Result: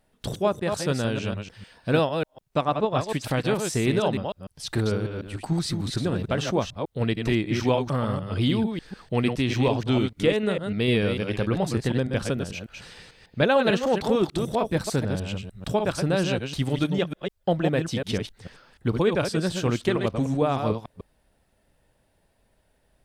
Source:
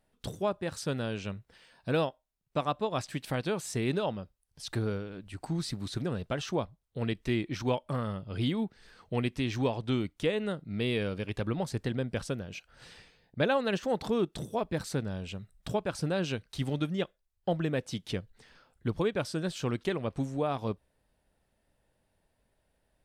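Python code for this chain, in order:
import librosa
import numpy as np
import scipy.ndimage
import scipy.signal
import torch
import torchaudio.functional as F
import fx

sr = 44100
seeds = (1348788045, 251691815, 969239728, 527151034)

y = fx.reverse_delay(x, sr, ms=149, wet_db=-5.5)
y = fx.high_shelf(y, sr, hz=4200.0, db=-10.0, at=(2.61, 3.07))
y = y * librosa.db_to_amplitude(6.5)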